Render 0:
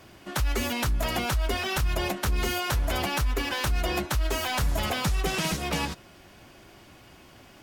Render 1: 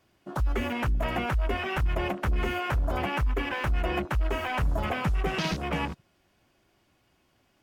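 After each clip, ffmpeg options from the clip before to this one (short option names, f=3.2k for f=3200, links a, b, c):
-af "afwtdn=0.0224"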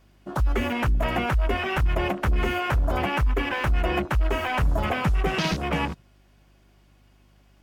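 -af "aeval=exprs='val(0)+0.000891*(sin(2*PI*50*n/s)+sin(2*PI*2*50*n/s)/2+sin(2*PI*3*50*n/s)/3+sin(2*PI*4*50*n/s)/4+sin(2*PI*5*50*n/s)/5)':c=same,volume=4dB"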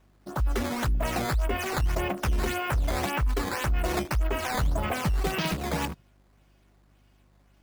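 -af "acrusher=samples=9:mix=1:aa=0.000001:lfo=1:lforange=14.4:lforate=1.8,volume=-3.5dB"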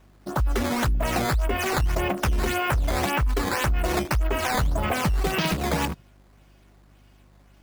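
-af "acompressor=threshold=-27dB:ratio=3,volume=6.5dB"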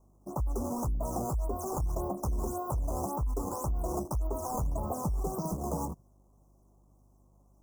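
-af "asuperstop=centerf=2600:order=12:qfactor=0.55,volume=-8dB"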